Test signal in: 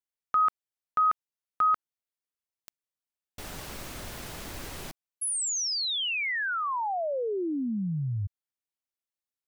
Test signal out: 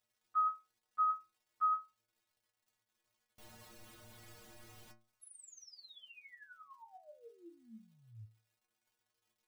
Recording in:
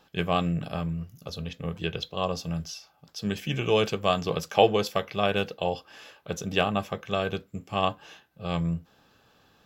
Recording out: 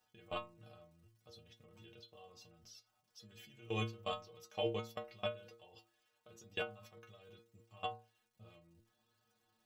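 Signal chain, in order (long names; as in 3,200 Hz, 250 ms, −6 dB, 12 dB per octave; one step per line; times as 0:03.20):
output level in coarse steps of 23 dB
surface crackle 230 per second −54 dBFS
stiff-string resonator 110 Hz, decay 0.41 s, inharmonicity 0.008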